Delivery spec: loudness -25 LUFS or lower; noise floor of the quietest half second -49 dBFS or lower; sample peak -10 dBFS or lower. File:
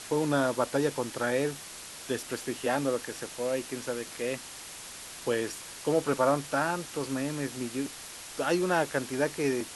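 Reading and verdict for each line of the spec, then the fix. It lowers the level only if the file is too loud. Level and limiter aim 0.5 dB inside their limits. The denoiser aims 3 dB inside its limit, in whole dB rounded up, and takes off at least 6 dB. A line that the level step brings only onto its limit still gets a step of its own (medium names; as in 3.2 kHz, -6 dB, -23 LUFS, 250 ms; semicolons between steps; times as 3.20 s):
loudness -30.5 LUFS: pass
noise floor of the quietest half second -44 dBFS: fail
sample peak -13.5 dBFS: pass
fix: noise reduction 8 dB, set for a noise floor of -44 dBFS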